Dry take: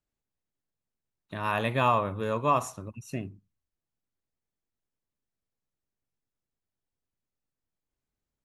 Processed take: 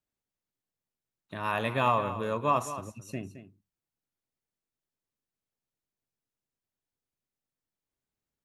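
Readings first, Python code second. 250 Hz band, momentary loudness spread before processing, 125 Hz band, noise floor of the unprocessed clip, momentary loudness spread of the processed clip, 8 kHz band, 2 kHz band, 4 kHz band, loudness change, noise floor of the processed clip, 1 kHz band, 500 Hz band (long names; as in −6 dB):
−2.0 dB, 17 LU, −3.0 dB, below −85 dBFS, 14 LU, −1.5 dB, −1.5 dB, −1.0 dB, −2.0 dB, below −85 dBFS, −1.5 dB, −1.5 dB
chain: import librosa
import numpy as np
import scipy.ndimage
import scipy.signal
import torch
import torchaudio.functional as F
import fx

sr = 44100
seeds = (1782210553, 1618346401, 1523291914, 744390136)

p1 = fx.low_shelf(x, sr, hz=62.0, db=-10.0)
p2 = p1 + fx.echo_single(p1, sr, ms=217, db=-12.5, dry=0)
y = p2 * librosa.db_to_amplitude(-1.5)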